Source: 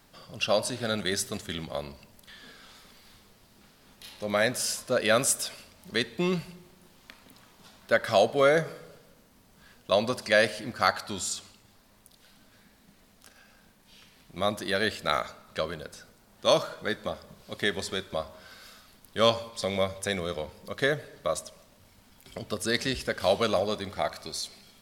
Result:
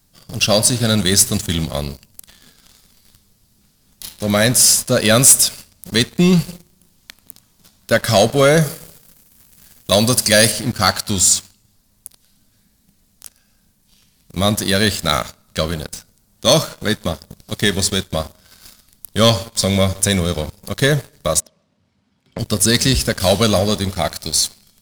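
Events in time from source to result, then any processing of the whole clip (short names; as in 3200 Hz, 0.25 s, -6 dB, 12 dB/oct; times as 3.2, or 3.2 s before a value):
8.61–10.52 high shelf 7000 Hz +11.5 dB
21.4–22.39 BPF 150–2700 Hz
whole clip: tone controls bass +13 dB, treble +14 dB; sample leveller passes 3; gain -3 dB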